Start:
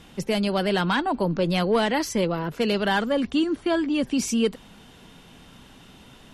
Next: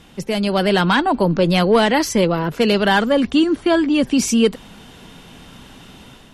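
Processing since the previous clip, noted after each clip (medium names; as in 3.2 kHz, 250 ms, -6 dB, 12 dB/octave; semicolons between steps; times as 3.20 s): level rider gain up to 5.5 dB; trim +2 dB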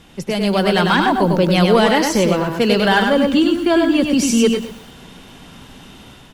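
delay 99 ms -4.5 dB; bit-crushed delay 120 ms, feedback 35%, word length 6-bit, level -12 dB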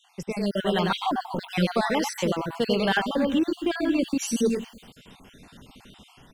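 random holes in the spectrogram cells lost 42%; trim -8 dB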